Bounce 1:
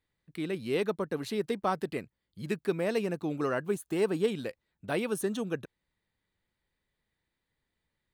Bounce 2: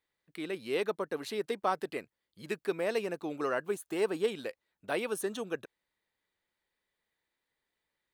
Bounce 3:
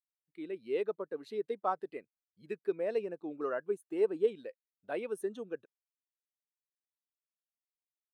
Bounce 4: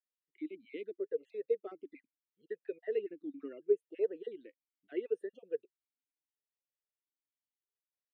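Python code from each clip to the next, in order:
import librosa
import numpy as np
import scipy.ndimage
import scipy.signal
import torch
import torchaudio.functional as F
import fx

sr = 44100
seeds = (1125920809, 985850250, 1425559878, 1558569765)

y1 = fx.bass_treble(x, sr, bass_db=-14, treble_db=-1)
y2 = fx.spectral_expand(y1, sr, expansion=1.5)
y2 = y2 * librosa.db_to_amplitude(-1.5)
y3 = fx.spec_dropout(y2, sr, seeds[0], share_pct=30)
y3 = fx.vowel_sweep(y3, sr, vowels='e-i', hz=0.75)
y3 = y3 * librosa.db_to_amplitude(6.5)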